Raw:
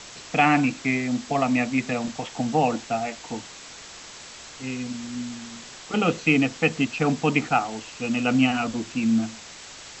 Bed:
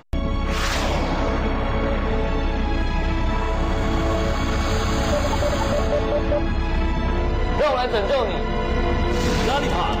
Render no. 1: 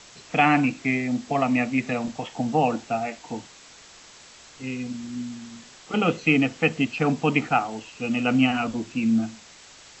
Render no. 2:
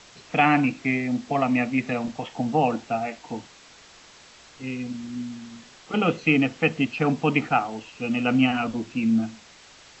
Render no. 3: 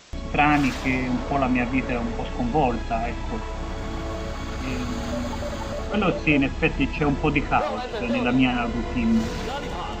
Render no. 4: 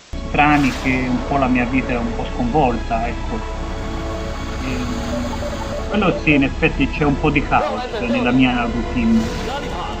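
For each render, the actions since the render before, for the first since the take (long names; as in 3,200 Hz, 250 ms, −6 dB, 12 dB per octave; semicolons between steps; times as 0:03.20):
noise reduction from a noise print 6 dB
Bessel low-pass filter 5,700 Hz
mix in bed −9 dB
level +5.5 dB; brickwall limiter −1 dBFS, peak gain reduction 1 dB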